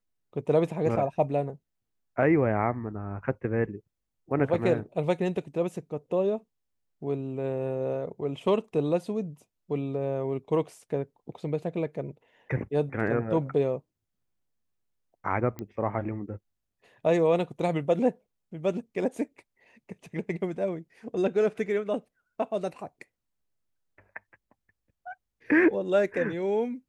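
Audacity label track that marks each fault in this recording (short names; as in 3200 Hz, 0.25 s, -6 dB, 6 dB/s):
15.590000	15.590000	pop -22 dBFS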